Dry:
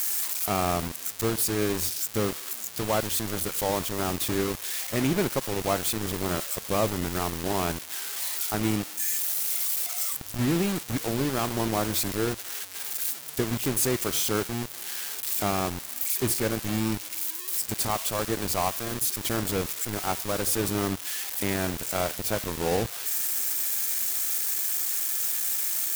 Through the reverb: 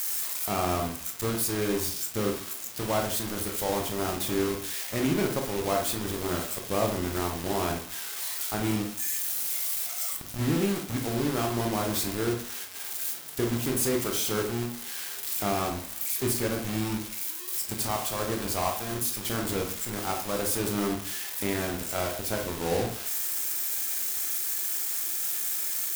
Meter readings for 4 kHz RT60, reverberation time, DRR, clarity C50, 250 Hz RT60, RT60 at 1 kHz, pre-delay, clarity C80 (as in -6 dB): 0.30 s, 0.55 s, 2.0 dB, 6.5 dB, 0.50 s, 0.55 s, 19 ms, 11.5 dB